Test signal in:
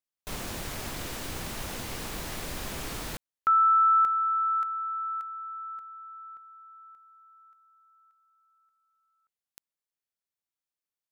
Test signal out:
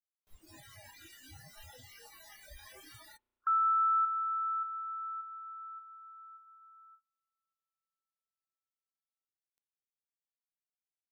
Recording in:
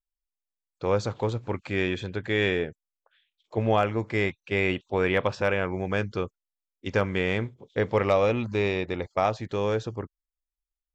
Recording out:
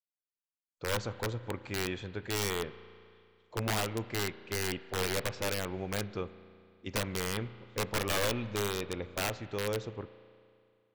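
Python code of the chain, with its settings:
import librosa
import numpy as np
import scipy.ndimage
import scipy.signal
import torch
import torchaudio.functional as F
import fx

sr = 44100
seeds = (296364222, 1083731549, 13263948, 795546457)

y = (np.mod(10.0 ** (17.0 / 20.0) * x + 1.0, 2.0) - 1.0) / 10.0 ** (17.0 / 20.0)
y = fx.rev_spring(y, sr, rt60_s=2.4, pass_ms=(34,), chirp_ms=35, drr_db=14.5)
y = fx.noise_reduce_blind(y, sr, reduce_db=29)
y = y * 10.0 ** (-7.5 / 20.0)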